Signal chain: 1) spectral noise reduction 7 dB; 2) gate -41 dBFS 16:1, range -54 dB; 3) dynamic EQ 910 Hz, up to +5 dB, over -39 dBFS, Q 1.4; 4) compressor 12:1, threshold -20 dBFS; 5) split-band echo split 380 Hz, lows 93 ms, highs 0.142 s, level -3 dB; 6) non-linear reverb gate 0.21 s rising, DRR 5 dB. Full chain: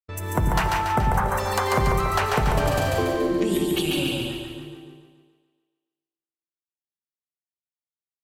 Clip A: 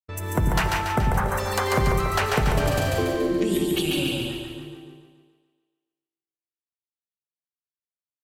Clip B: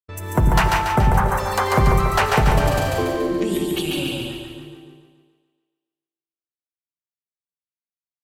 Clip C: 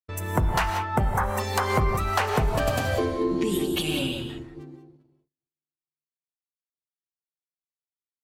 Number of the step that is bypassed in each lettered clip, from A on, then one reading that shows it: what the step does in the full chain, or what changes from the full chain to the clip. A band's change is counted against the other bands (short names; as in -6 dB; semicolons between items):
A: 3, 1 kHz band -3.0 dB; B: 4, mean gain reduction 2.0 dB; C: 5, echo-to-direct 1.0 dB to -5.0 dB